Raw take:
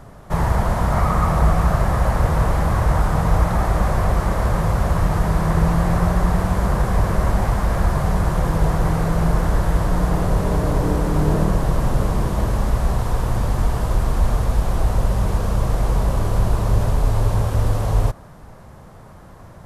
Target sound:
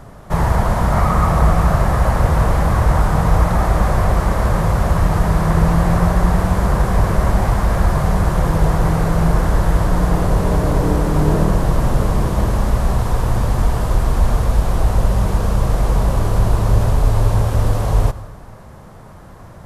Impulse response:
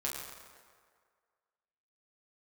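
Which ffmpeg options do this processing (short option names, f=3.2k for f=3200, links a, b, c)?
-filter_complex "[0:a]asplit=2[a][b];[1:a]atrim=start_sample=2205,adelay=94[c];[b][c]afir=irnorm=-1:irlink=0,volume=-19dB[d];[a][d]amix=inputs=2:normalize=0,volume=3dB"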